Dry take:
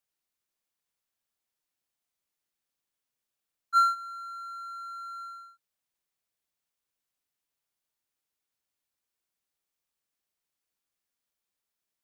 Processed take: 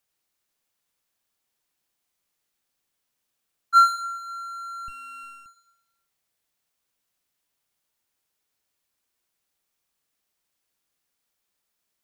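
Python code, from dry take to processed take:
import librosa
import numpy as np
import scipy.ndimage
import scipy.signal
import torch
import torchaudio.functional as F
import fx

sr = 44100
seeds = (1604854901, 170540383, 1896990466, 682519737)

y = fx.echo_feedback(x, sr, ms=107, feedback_pct=45, wet_db=-8.5)
y = fx.running_max(y, sr, window=17, at=(4.88, 5.46))
y = F.gain(torch.from_numpy(y), 7.0).numpy()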